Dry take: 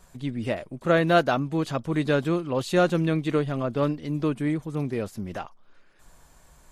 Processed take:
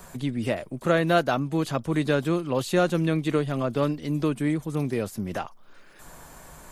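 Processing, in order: treble shelf 9.8 kHz +11.5 dB; three bands compressed up and down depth 40%

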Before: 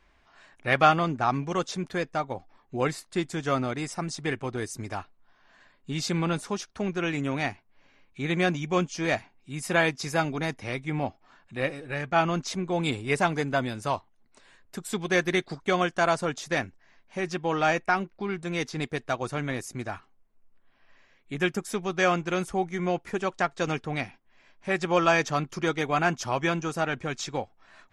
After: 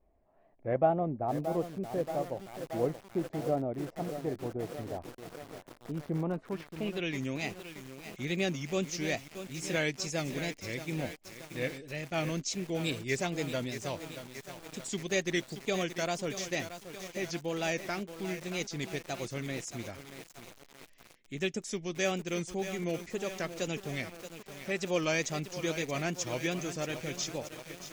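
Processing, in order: high-order bell 1.1 kHz -10 dB 1.3 oct; wow and flutter 110 cents; low-pass sweep 750 Hz -> 6.7 kHz, 6.16–7.24 s; bit-crushed delay 627 ms, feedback 80%, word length 6-bit, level -9.5 dB; trim -6 dB

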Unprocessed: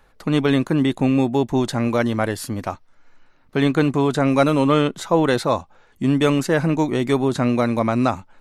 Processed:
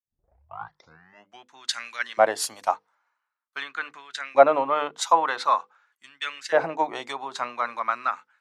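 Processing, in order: tape start-up on the opening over 1.53 s; low-pass that closes with the level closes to 2.5 kHz, closed at -12.5 dBFS; tone controls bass +7 dB, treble +5 dB; hum notches 50/100/150/200/250/300/350/400/450/500 Hz; compression 5:1, threshold -15 dBFS, peak gain reduction 8 dB; LFO high-pass saw up 0.46 Hz 650–1800 Hz; three bands expanded up and down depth 100%; trim -2.5 dB

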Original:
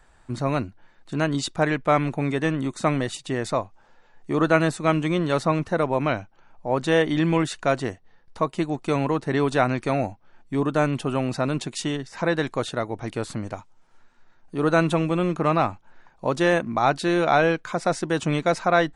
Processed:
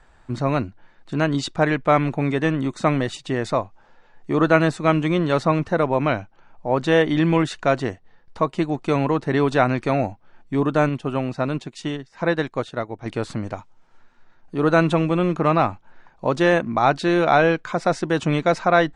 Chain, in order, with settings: distance through air 67 m; 10.89–13.06 s: upward expansion 1.5:1, over -45 dBFS; trim +3 dB

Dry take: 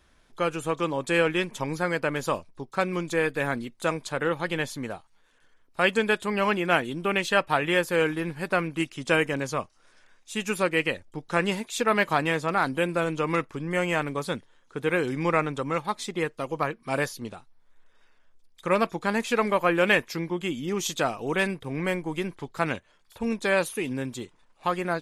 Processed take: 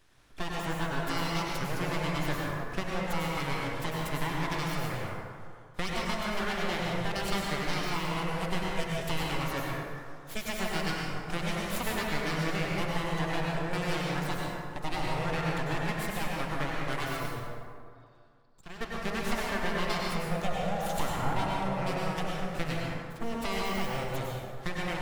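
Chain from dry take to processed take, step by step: 20.44–21.74 s: peaking EQ 420 Hz +12.5 dB 2 oct; compression 5:1, threshold -28 dBFS, peak gain reduction 14.5 dB; 17.26–18.81 s: four-pole ladder low-pass 4.7 kHz, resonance 70%; full-wave rectifier; plate-style reverb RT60 2.2 s, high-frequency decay 0.45×, pre-delay 85 ms, DRR -3.5 dB; trim -1 dB

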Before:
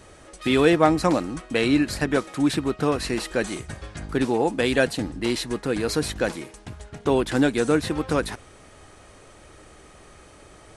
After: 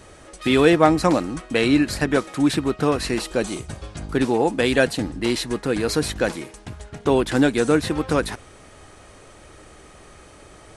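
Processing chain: 3.21–4.13 s: peaking EQ 1.8 kHz -7.5 dB 0.6 oct; trim +2.5 dB

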